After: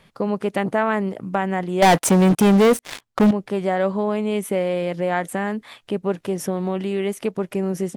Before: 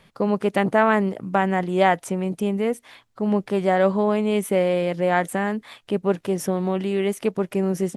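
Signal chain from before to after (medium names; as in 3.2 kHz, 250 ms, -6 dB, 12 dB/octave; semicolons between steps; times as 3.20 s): 1.82–3.31 s: waveshaping leveller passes 5; in parallel at +1.5 dB: compression, threshold -22 dBFS, peak gain reduction 13 dB; on the sum: trim -6 dB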